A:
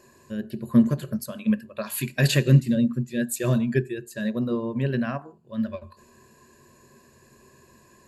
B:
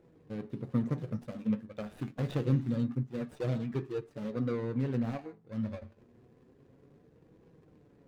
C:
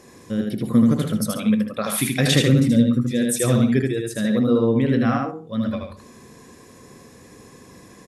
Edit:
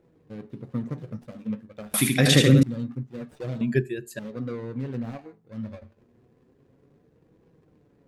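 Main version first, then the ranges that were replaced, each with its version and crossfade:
B
0:01.94–0:02.63: punch in from C
0:03.61–0:04.19: punch in from A

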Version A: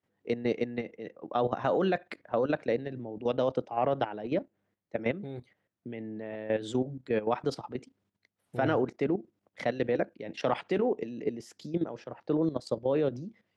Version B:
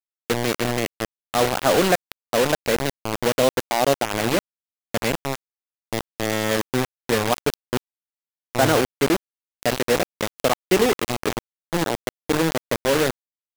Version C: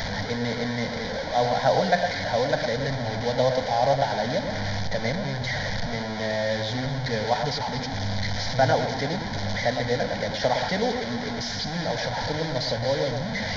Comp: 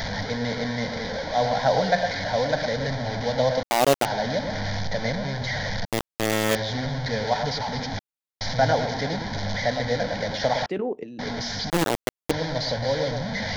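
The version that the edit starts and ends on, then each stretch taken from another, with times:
C
0:03.63–0:04.05: punch in from B
0:05.85–0:06.55: punch in from B
0:07.99–0:08.41: punch in from B
0:10.66–0:11.19: punch in from A
0:11.70–0:12.31: punch in from B

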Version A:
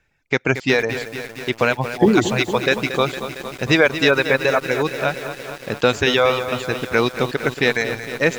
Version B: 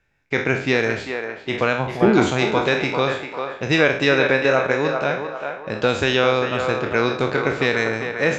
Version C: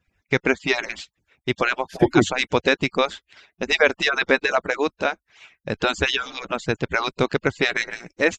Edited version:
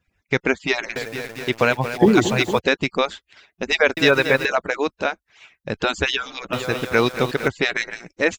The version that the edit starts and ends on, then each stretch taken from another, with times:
C
0:00.96–0:02.59: punch in from A
0:03.97–0:04.45: punch in from A
0:06.53–0:07.48: punch in from A
not used: B

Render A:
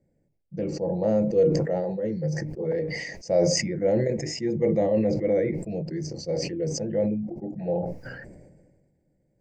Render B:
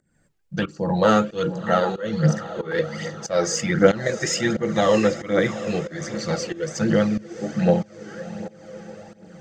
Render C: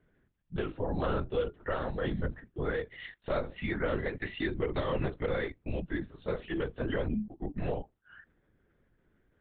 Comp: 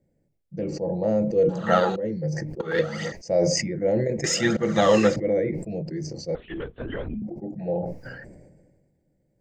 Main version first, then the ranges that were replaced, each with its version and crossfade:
A
0:01.49–0:01.96: punch in from B
0:02.60–0:03.12: punch in from B
0:04.24–0:05.16: punch in from B
0:06.35–0:07.22: punch in from C

